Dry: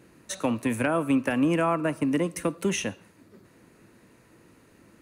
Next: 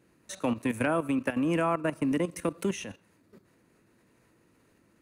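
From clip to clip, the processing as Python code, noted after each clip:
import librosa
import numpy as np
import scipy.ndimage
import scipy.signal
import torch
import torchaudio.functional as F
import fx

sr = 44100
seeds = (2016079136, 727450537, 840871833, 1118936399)

y = fx.level_steps(x, sr, step_db=13)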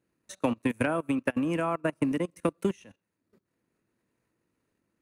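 y = fx.transient(x, sr, attack_db=4, sustain_db=-6)
y = fx.upward_expand(y, sr, threshold_db=-48.0, expansion=1.5)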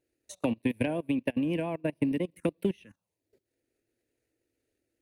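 y = fx.env_phaser(x, sr, low_hz=180.0, high_hz=1300.0, full_db=-29.5)
y = fx.vibrato(y, sr, rate_hz=7.3, depth_cents=46.0)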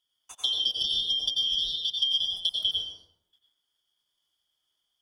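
y = fx.band_shuffle(x, sr, order='3412')
y = fx.rev_plate(y, sr, seeds[0], rt60_s=0.81, hf_ratio=0.5, predelay_ms=80, drr_db=-1.5)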